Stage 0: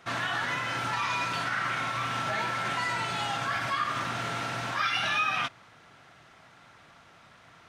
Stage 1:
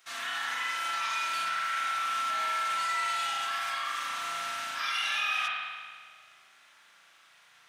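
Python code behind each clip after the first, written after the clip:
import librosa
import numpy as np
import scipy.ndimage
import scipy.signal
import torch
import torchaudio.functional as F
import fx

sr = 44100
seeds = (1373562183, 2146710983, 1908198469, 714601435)

y = np.diff(x, prepend=0.0)
y = fx.rev_spring(y, sr, rt60_s=1.7, pass_ms=(36,), chirp_ms=60, drr_db=-5.0)
y = y * 10.0 ** (3.0 / 20.0)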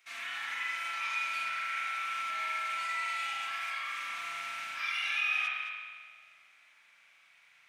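y = fx.peak_eq(x, sr, hz=2300.0, db=13.0, octaves=0.46)
y = y + 10.0 ** (-11.0 / 20.0) * np.pad(y, (int(215 * sr / 1000.0), 0))[:len(y)]
y = y * 10.0 ** (-9.0 / 20.0)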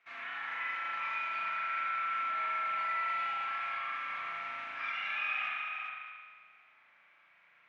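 y = scipy.signal.sosfilt(scipy.signal.butter(2, 1700.0, 'lowpass', fs=sr, output='sos'), x)
y = y + 10.0 ** (-6.0 / 20.0) * np.pad(y, (int(411 * sr / 1000.0), 0))[:len(y)]
y = y * 10.0 ** (2.5 / 20.0)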